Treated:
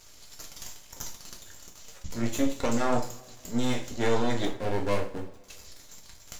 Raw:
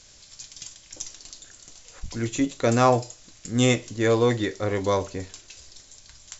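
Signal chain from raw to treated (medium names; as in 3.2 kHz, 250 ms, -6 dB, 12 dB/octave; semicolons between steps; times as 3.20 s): 4.45–5.44 s: median filter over 41 samples; peak limiter -15 dBFS, peak gain reduction 9 dB; half-wave rectifier; two-slope reverb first 0.35 s, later 1.8 s, from -21 dB, DRR 1.5 dB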